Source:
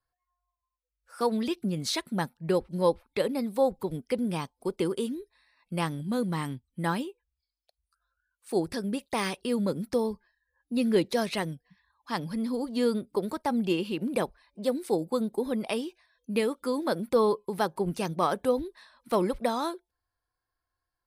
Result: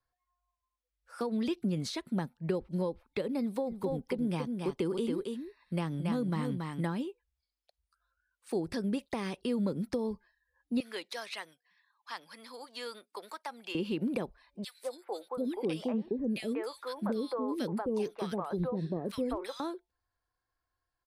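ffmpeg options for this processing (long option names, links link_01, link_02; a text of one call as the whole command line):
ffmpeg -i in.wav -filter_complex "[0:a]asplit=3[link_01][link_02][link_03];[link_01]afade=type=out:start_time=3.66:duration=0.02[link_04];[link_02]aecho=1:1:278:0.473,afade=type=in:start_time=3.66:duration=0.02,afade=type=out:start_time=6.8:duration=0.02[link_05];[link_03]afade=type=in:start_time=6.8:duration=0.02[link_06];[link_04][link_05][link_06]amix=inputs=3:normalize=0,asettb=1/sr,asplit=3[link_07][link_08][link_09];[link_07]atrim=end=10.804[link_10];[link_08]atrim=start=10.8:end=13.75,asetpts=PTS-STARTPTS,afade=type=in:duration=0.004:curve=qsin,afade=type=out:start_time=2.946:duration=0.004:curve=qsin,highpass=1100[link_11];[link_09]atrim=start=13.746[link_12];[link_10][link_11]acrossfade=duration=0.004:curve1=hsin:curve2=qsin[link_13];[link_13][link_12]acrossfade=duration=0.004:curve1=qsin:curve2=hsin,asettb=1/sr,asplit=3[link_14][link_15][link_16];[link_14]atrim=end=14.644[link_17];[link_15]atrim=start=14.64:end=19.6,asetpts=PTS-STARTPTS,afade=type=in:duration=0.004:curve=qsin,afade=type=out:start_time=4.956:duration=0.004:curve=qsin,acrossover=split=530|1800[link_18][link_19][link_20];[link_19]adelay=190[link_21];[link_18]adelay=730[link_22];[link_22][link_21][link_20]amix=inputs=3:normalize=0,atrim=end_sample=218736[link_23];[link_16]atrim=start=19.596[link_24];[link_17][link_23]acrossfade=duration=0.004:curve1=hsin:curve2=qsin[link_25];[link_25][link_24]acrossfade=duration=0.004:curve1=qsin:curve2=hsin,acompressor=threshold=-26dB:ratio=6,highshelf=frequency=8600:gain=-10,acrossover=split=430[link_26][link_27];[link_27]acompressor=threshold=-39dB:ratio=3[link_28];[link_26][link_28]amix=inputs=2:normalize=0" out.wav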